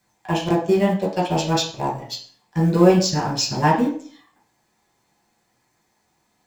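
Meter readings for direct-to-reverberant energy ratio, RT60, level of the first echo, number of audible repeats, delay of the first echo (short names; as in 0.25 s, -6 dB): -2.0 dB, 0.50 s, none, none, none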